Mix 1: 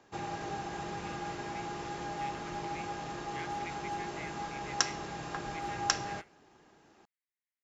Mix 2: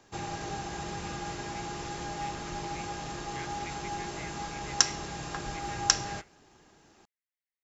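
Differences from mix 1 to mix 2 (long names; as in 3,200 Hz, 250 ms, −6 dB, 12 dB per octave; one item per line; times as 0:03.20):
background: add high-shelf EQ 4,200 Hz +11 dB
master: add low-shelf EQ 100 Hz +11 dB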